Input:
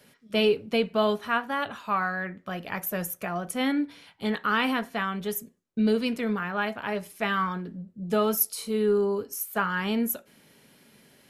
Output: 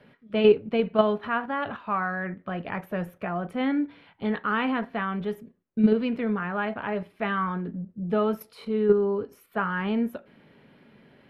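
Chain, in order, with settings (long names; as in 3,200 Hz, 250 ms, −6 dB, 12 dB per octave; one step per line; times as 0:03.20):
in parallel at +3 dB: output level in coarse steps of 21 dB
on the sum: high-frequency loss of the air 450 metres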